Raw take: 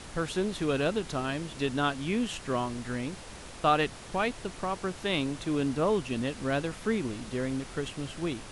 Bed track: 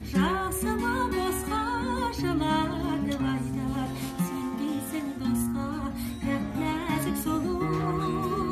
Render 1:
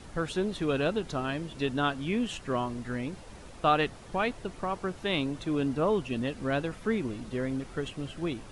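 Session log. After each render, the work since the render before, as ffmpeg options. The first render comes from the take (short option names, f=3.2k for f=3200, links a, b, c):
-af "afftdn=nr=8:nf=-45"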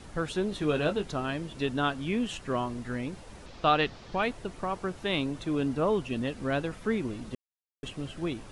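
-filter_complex "[0:a]asettb=1/sr,asplit=3[a][b][c];[a]atrim=end=0.504[d];[b]atrim=start=0.5:end=1.05,asetpts=PTS-STARTPTS,afade=t=in:d=0.004:c=qsin,afade=t=out:st=0.546:d=0.004:c=qsin,asplit=2[e][f];[f]adelay=20,volume=-8dB[g];[e][g]amix=inputs=2:normalize=0,atrim=end_sample=24255[h];[c]atrim=start=1.046[i];[d][h]acrossfade=d=0.004:c1=hsin:c2=qsin[j];[j][i]acrossfade=d=0.004:c1=qsin:c2=hsin,asettb=1/sr,asplit=3[k][l][m];[k]atrim=end=3.464[n];[l]atrim=start=3.46:end=4.23,asetpts=PTS-STARTPTS,afade=t=in:d=0.004:c=qsin,afade=t=out:st=0.766:d=0.004:c=qsin,lowpass=f=4.8k:t=q:w=1.7[o];[m]atrim=start=4.226[p];[n][o]acrossfade=d=0.004:c1=hsin:c2=qsin[q];[q][p]acrossfade=d=0.004:c1=qsin:c2=hsin,asplit=3[r][s][t];[r]atrim=end=7.35,asetpts=PTS-STARTPTS,afade=t=out:st=7.346:d=0.004:c=hsin[u];[s]atrim=start=7.35:end=7.83,asetpts=PTS-STARTPTS,volume=0[v];[t]atrim=start=7.83,asetpts=PTS-STARTPTS,afade=t=in:d=0.004:c=hsin[w];[u][v][w]concat=n=3:v=0:a=1"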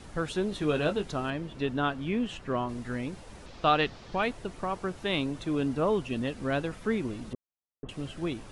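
-filter_complex "[0:a]asettb=1/sr,asplit=3[a][b][c];[a]atrim=end=1.304[d];[b]atrim=start=1.3:end=2.69,asetpts=PTS-STARTPTS,afade=t=in:d=0.004:c=qsin,afade=t=out:st=1.386:d=0.004:c=qsin,highshelf=f=5.4k:g=-12[e];[c]atrim=start=2.686[f];[d][e]acrossfade=d=0.004:c1=hsin:c2=qsin[g];[g][f]acrossfade=d=0.004:c1=qsin:c2=hsin,asettb=1/sr,asplit=3[h][i][j];[h]atrim=end=7.334[k];[i]atrim=start=7.33:end=7.89,asetpts=PTS-STARTPTS,afade=t=in:d=0.004:c=qsin,afade=t=out:st=0.556:d=0.004:c=qsin,lowpass=f=1.2k:w=0.5412,lowpass=f=1.2k:w=1.3066[l];[j]atrim=start=7.886[m];[k][l]acrossfade=d=0.004:c1=hsin:c2=qsin[n];[n][m]acrossfade=d=0.004:c1=qsin:c2=hsin"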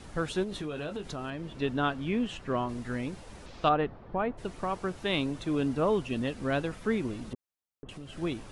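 -filter_complex "[0:a]asettb=1/sr,asplit=3[a][b][c];[a]atrim=end=0.434[d];[b]atrim=start=0.43:end=1.62,asetpts=PTS-STARTPTS,afade=t=in:d=0.004:c=qsin,afade=t=out:st=1.186:d=0.004:c=qsin,acompressor=threshold=-32dB:ratio=6:attack=3.2:release=140:knee=1:detection=peak[e];[c]atrim=start=1.616[f];[d][e]acrossfade=d=0.004:c1=hsin:c2=qsin[g];[g][f]acrossfade=d=0.004:c1=qsin:c2=hsin,asplit=3[h][i][j];[h]afade=t=out:st=3.68:d=0.02[k];[i]lowpass=1.2k,afade=t=in:st=3.68:d=0.02,afade=t=out:st=4.37:d=0.02[l];[j]afade=t=in:st=4.37:d=0.02[m];[k][l][m]amix=inputs=3:normalize=0,asettb=1/sr,asplit=3[n][o][p];[n]atrim=end=7.344[q];[o]atrim=start=7.34:end=8.13,asetpts=PTS-STARTPTS,afade=t=in:d=0.004:c=qsin,afade=t=out:st=0.786:d=0.004:c=qsin,acompressor=threshold=-39dB:ratio=6:attack=3.2:release=140:knee=1:detection=peak[r];[p]atrim=start=8.126[s];[q][r]acrossfade=d=0.004:c1=hsin:c2=qsin[t];[t][s]acrossfade=d=0.004:c1=qsin:c2=hsin"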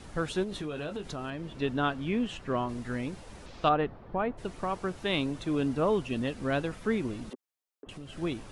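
-filter_complex "[0:a]asettb=1/sr,asplit=3[a][b][c];[a]atrim=end=7.304[d];[b]atrim=start=7.3:end=7.87,asetpts=PTS-STARTPTS,afade=t=in:d=0.004:c=qsin,afade=t=out:st=0.566:d=0.004:c=qsin,highpass=f=270:w=0.5412,highpass=f=270:w=1.3066[e];[c]atrim=start=7.866[f];[d][e]acrossfade=d=0.004:c1=hsin:c2=qsin[g];[g][f]acrossfade=d=0.004:c1=qsin:c2=hsin"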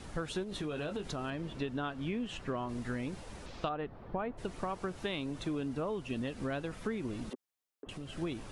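-af "acompressor=threshold=-32dB:ratio=12"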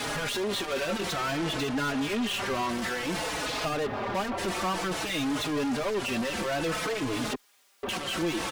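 -filter_complex "[0:a]asplit=2[a][b];[b]highpass=f=720:p=1,volume=40dB,asoftclip=type=tanh:threshold=-20.5dB[c];[a][c]amix=inputs=2:normalize=0,lowpass=f=6k:p=1,volume=-6dB,asplit=2[d][e];[e]adelay=4.3,afreqshift=-0.56[f];[d][f]amix=inputs=2:normalize=1"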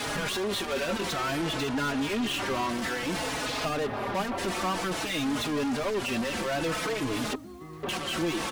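-filter_complex "[1:a]volume=-16dB[a];[0:a][a]amix=inputs=2:normalize=0"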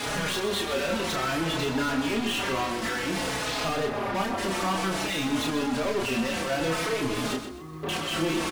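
-filter_complex "[0:a]asplit=2[a][b];[b]adelay=31,volume=-3.5dB[c];[a][c]amix=inputs=2:normalize=0,asplit=2[d][e];[e]aecho=0:1:127|254|381:0.335|0.104|0.0322[f];[d][f]amix=inputs=2:normalize=0"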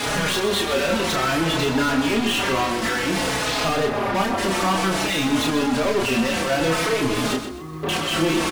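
-af "volume=6.5dB"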